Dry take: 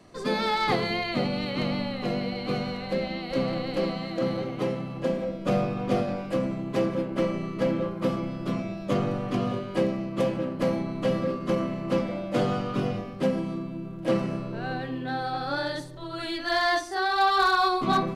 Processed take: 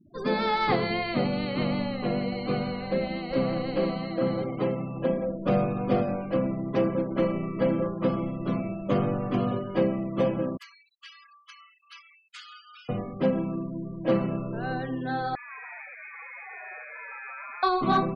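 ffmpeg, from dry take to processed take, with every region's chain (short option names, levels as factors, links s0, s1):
-filter_complex "[0:a]asettb=1/sr,asplit=3[s0][s1][s2];[s0]atrim=end=10.574[s3];[s1]atrim=start=10.57:end=12.89,asetpts=PTS-STARTPTS,afade=t=in:d=0.004:c=qsin,afade=t=out:st=2.316:d=0.004:c=qsin,highpass=f=1200:w=0.5412,highpass=f=1200:w=1.3066,aderivative,acontrast=26[s4];[s2]atrim=start=12.886[s5];[s3][s4]acrossfade=d=0.004:c1=hsin:c2=qsin[s6];[s6][s5]acrossfade=d=0.004:c1=qsin:c2=hsin,asettb=1/sr,asplit=3[s7][s8][s9];[s7]atrim=end=15.354[s10];[s8]atrim=start=15.35:end=17.63,asetpts=PTS-STARTPTS,afade=t=in:d=0.004:c=qsin,afade=t=out:st=2.276:d=0.004:c=qsin,aeval=exprs='(tanh(126*val(0)+0.6)-tanh(0.6))/126':c=same,asplit=9[s11][s12][s13][s14][s15][s16][s17][s18][s19];[s12]adelay=148,afreqshift=140,volume=0.631[s20];[s13]adelay=296,afreqshift=280,volume=0.355[s21];[s14]adelay=444,afreqshift=420,volume=0.197[s22];[s15]adelay=592,afreqshift=560,volume=0.111[s23];[s16]adelay=740,afreqshift=700,volume=0.0624[s24];[s17]adelay=888,afreqshift=840,volume=0.0347[s25];[s18]adelay=1036,afreqshift=980,volume=0.0195[s26];[s19]adelay=1184,afreqshift=1120,volume=0.0108[s27];[s11][s20][s21][s22][s23][s24][s25][s26][s27]amix=inputs=9:normalize=0,atrim=end_sample=100548,lowpass=f=2100:t=q:w=0.5098,lowpass=f=2100:t=q:w=0.6013,lowpass=f=2100:t=q:w=0.9,lowpass=f=2100:t=q:w=2.563,afreqshift=-2500[s28];[s9]atrim=start=17.626[s29];[s10][s28]acrossfade=d=0.004:c1=hsin:c2=qsin[s30];[s30][s29]acrossfade=d=0.004:c1=qsin:c2=hsin,afftfilt=real='re*gte(hypot(re,im),0.01)':imag='im*gte(hypot(re,im),0.01)':win_size=1024:overlap=0.75,highshelf=f=4500:g=-10,volume=1.12"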